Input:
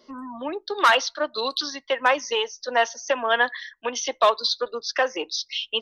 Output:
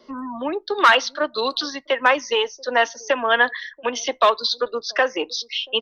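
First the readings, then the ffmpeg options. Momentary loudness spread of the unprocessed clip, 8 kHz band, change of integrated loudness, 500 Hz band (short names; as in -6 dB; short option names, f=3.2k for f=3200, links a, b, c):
11 LU, -0.5 dB, +3.0 dB, +3.0 dB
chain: -filter_complex "[0:a]highshelf=f=5.6k:g=-11.5,acrossover=split=570|880[a][b][c];[a]aecho=1:1:682:0.0794[d];[b]acompressor=threshold=-38dB:ratio=6[e];[d][e][c]amix=inputs=3:normalize=0,volume=5.5dB"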